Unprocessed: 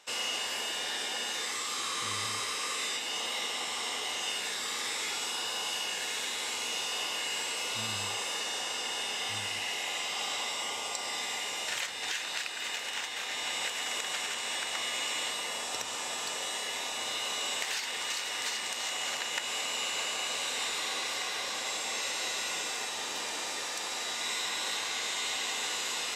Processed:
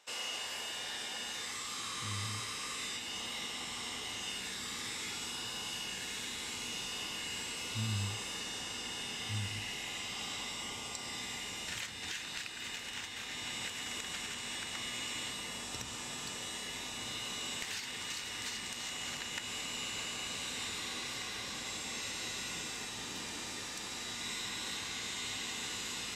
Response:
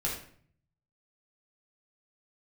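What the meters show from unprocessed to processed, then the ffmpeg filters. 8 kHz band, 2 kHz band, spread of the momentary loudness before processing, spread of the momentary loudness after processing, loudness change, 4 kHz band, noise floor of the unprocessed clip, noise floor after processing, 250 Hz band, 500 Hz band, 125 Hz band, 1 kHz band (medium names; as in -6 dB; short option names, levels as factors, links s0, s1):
-6.0 dB, -6.5 dB, 2 LU, 3 LU, -6.0 dB, -6.0 dB, -37 dBFS, -43 dBFS, +2.0 dB, -8.0 dB, +10.0 dB, -8.5 dB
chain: -af "asubboost=boost=9.5:cutoff=190,volume=0.501"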